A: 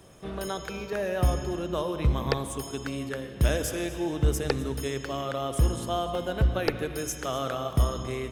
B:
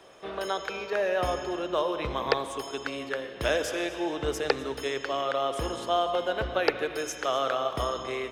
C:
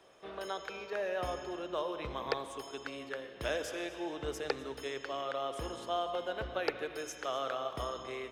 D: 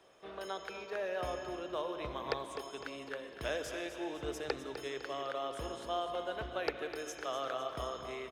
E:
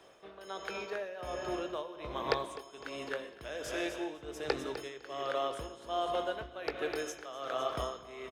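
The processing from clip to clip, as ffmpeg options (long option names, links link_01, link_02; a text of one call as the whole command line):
ffmpeg -i in.wav -filter_complex "[0:a]acrossover=split=360 5500:gain=0.112 1 0.178[link_01][link_02][link_03];[link_01][link_02][link_03]amix=inputs=3:normalize=0,volume=4.5dB" out.wav
ffmpeg -i in.wav -af "volume=11.5dB,asoftclip=hard,volume=-11.5dB,volume=-8.5dB" out.wav
ffmpeg -i in.wav -af "aecho=1:1:253|506|759|1012|1265|1518:0.282|0.152|0.0822|0.0444|0.024|0.0129,volume=-2dB" out.wav
ffmpeg -i in.wav -filter_complex "[0:a]tremolo=f=1.3:d=0.76,asplit=2[link_01][link_02];[link_02]adelay=20,volume=-13dB[link_03];[link_01][link_03]amix=inputs=2:normalize=0,volume=5dB" out.wav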